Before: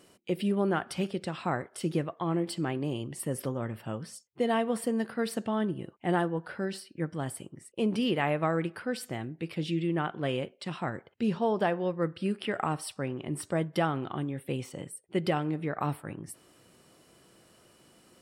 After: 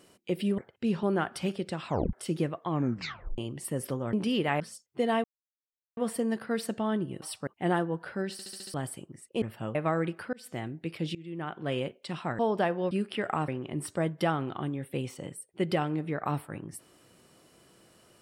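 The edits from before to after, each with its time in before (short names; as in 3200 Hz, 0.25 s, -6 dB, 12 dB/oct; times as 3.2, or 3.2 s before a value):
1.43 tape stop 0.25 s
2.25 tape stop 0.68 s
3.68–4.01 swap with 7.85–8.32
4.65 insert silence 0.73 s
6.75 stutter in place 0.07 s, 6 plays
8.9–9.15 fade in
9.72–10.34 fade in, from -22 dB
10.96–11.41 move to 0.58
11.93–12.21 cut
12.78–13.03 move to 5.9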